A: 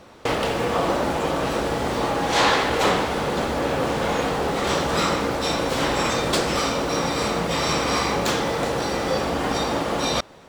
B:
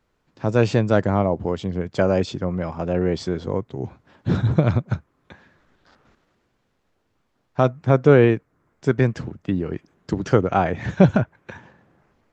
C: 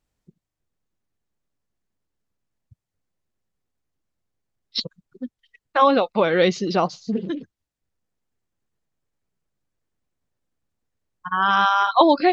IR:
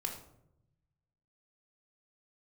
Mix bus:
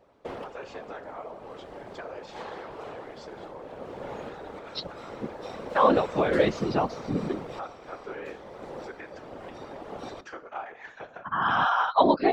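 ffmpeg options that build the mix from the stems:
-filter_complex "[0:a]equalizer=f=550:w=1.1:g=5.5,volume=-12dB,asplit=2[a][b];[b]volume=-20dB[c];[1:a]acompressor=threshold=-25dB:ratio=2,highpass=840,volume=-4dB,asplit=3[d][e][f];[e]volume=-4dB[g];[2:a]volume=1.5dB[h];[f]apad=whole_len=462476[i];[a][i]sidechaincompress=threshold=-44dB:ratio=4:attack=9.3:release=602[j];[3:a]atrim=start_sample=2205[k];[c][g]amix=inputs=2:normalize=0[l];[l][k]afir=irnorm=-1:irlink=0[m];[j][d][h][m]amix=inputs=4:normalize=0,highshelf=f=4k:g=-11.5,afftfilt=real='hypot(re,im)*cos(2*PI*random(0))':imag='hypot(re,im)*sin(2*PI*random(1))':win_size=512:overlap=0.75"

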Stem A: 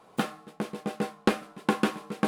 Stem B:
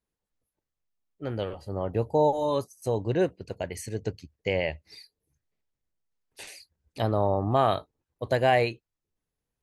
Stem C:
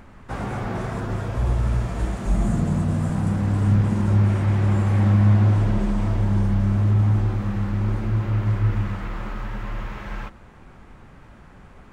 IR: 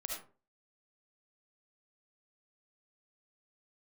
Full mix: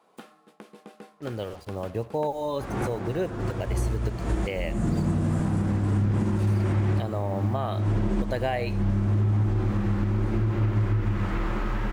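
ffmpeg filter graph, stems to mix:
-filter_complex "[0:a]highpass=200,acompressor=threshold=-37dB:ratio=3,volume=-7.5dB,asplit=2[a][b];[b]volume=-18dB[c];[1:a]acrusher=bits=7:mix=0:aa=0.5,acompressor=threshold=-29dB:ratio=1.5,volume=-1.5dB,asplit=3[d][e][f];[e]volume=-14.5dB[g];[2:a]equalizer=f=340:t=o:w=0.47:g=7.5,adelay=2300,volume=2dB[h];[f]apad=whole_len=627440[i];[h][i]sidechaincompress=threshold=-42dB:ratio=4:attack=26:release=247[j];[3:a]atrim=start_sample=2205[k];[c][g]amix=inputs=2:normalize=0[l];[l][k]afir=irnorm=-1:irlink=0[m];[a][d][j][m]amix=inputs=4:normalize=0,alimiter=limit=-16.5dB:level=0:latency=1:release=189"

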